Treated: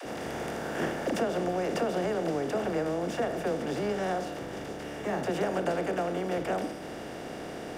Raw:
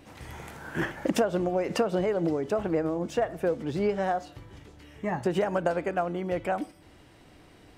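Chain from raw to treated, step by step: per-bin compression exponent 0.4; dispersion lows, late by 58 ms, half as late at 320 Hz; gain -8 dB

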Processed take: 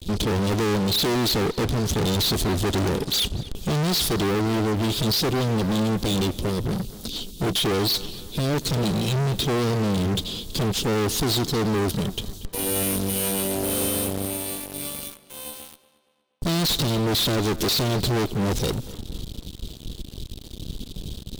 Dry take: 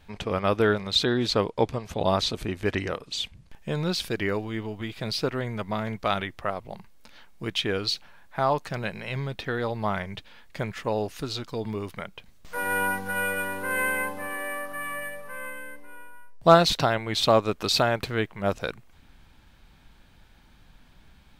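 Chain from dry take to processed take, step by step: elliptic band-stop 400–3400 Hz; fuzz box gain 48 dB, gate -55 dBFS; tape echo 0.237 s, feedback 50%, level -16.5 dB, low-pass 4600 Hz; gain -8 dB

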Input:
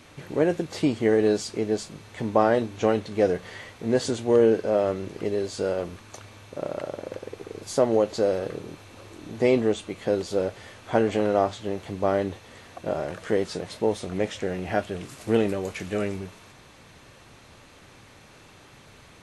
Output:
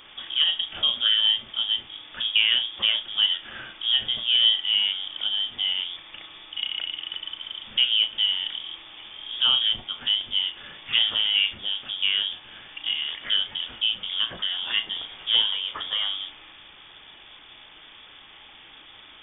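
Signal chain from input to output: in parallel at -2 dB: compressor, threshold -31 dBFS, peak gain reduction 15.5 dB; on the sum: flutter echo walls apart 6 m, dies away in 0.2 s; vibrato 2.6 Hz 5.1 cents; inverted band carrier 3500 Hz; gain -2.5 dB

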